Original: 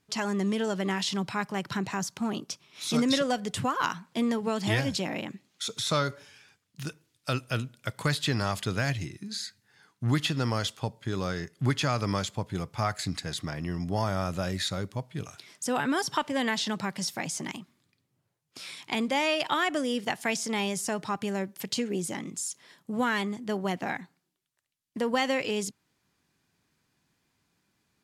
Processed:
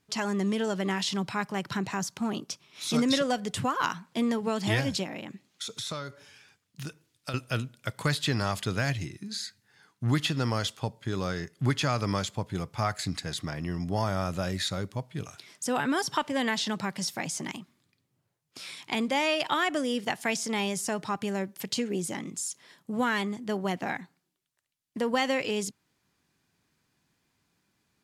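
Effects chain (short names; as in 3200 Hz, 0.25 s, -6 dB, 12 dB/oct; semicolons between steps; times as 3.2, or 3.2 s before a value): 5.03–7.34 compressor 4:1, threshold -34 dBFS, peak gain reduction 11 dB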